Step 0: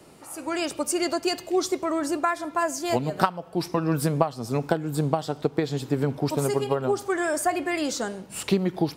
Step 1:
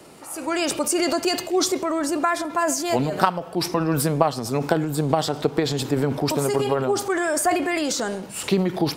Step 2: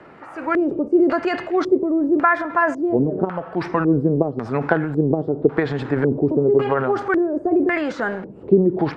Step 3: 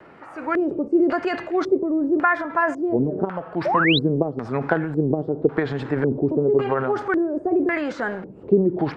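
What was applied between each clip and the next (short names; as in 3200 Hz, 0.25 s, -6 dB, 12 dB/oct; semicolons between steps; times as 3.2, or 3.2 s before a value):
low shelf 140 Hz -7 dB; vocal rider within 3 dB 2 s; transient shaper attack 0 dB, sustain +8 dB; gain +3 dB
LFO low-pass square 0.91 Hz 390–1700 Hz; gain +1 dB
vibrato 1.9 Hz 47 cents; painted sound rise, 3.65–3.99, 530–4200 Hz -18 dBFS; gain -2.5 dB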